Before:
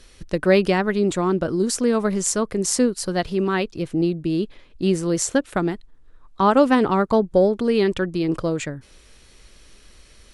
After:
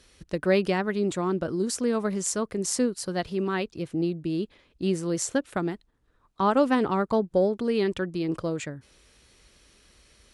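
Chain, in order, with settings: high-pass 46 Hz; trim -6 dB

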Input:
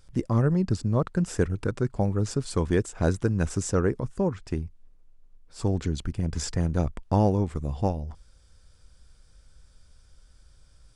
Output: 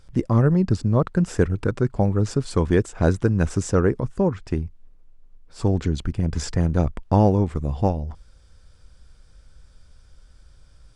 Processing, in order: treble shelf 5.5 kHz -8 dB; trim +5 dB

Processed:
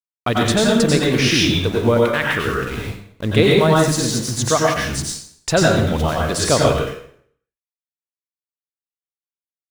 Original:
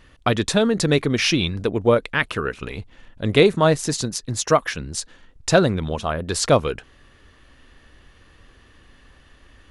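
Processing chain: in parallel at -0.5 dB: peak limiter -13.5 dBFS, peak gain reduction 11.5 dB; on the sum: small samples zeroed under -28.5 dBFS; plate-style reverb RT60 0.61 s, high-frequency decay 0.9×, pre-delay 80 ms, DRR -2.5 dB; trim -4.5 dB

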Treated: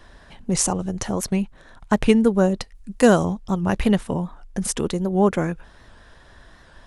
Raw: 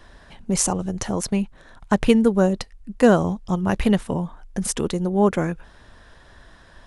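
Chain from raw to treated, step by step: 2.75–3.25 s: treble shelf 4 kHz +9.5 dB; warped record 78 rpm, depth 100 cents

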